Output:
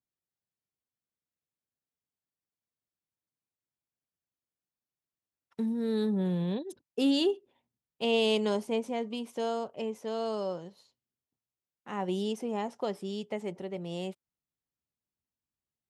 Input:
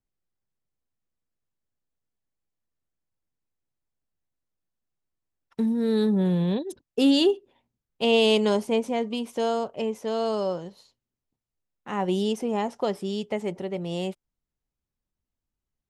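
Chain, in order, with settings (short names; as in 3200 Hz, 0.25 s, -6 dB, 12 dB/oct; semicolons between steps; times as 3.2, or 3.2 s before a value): HPF 90 Hz; gain -6.5 dB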